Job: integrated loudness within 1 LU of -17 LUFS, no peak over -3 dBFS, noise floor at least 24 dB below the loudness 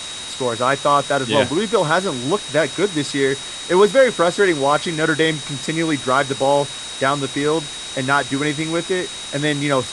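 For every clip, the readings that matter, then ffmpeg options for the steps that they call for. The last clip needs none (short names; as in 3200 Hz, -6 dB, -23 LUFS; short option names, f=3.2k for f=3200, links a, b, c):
steady tone 3800 Hz; tone level -31 dBFS; noise floor -31 dBFS; noise floor target -43 dBFS; loudness -19.0 LUFS; peak -2.5 dBFS; loudness target -17.0 LUFS
-> -af "bandreject=f=3.8k:w=30"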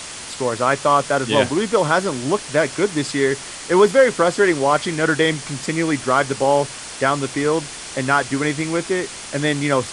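steady tone none; noise floor -34 dBFS; noise floor target -43 dBFS
-> -af "afftdn=nr=9:nf=-34"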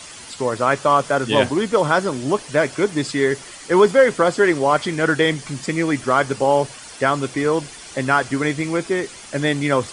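noise floor -39 dBFS; noise floor target -43 dBFS
-> -af "afftdn=nr=6:nf=-39"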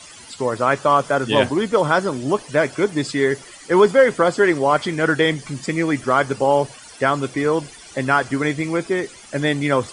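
noise floor -42 dBFS; noise floor target -44 dBFS
-> -af "afftdn=nr=6:nf=-42"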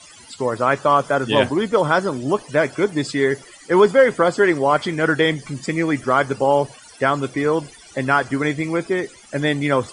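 noise floor -45 dBFS; loudness -19.5 LUFS; peak -2.5 dBFS; loudness target -17.0 LUFS
-> -af "volume=2.5dB,alimiter=limit=-3dB:level=0:latency=1"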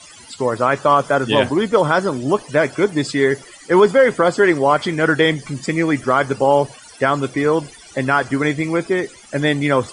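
loudness -17.5 LUFS; peak -3.0 dBFS; noise floor -43 dBFS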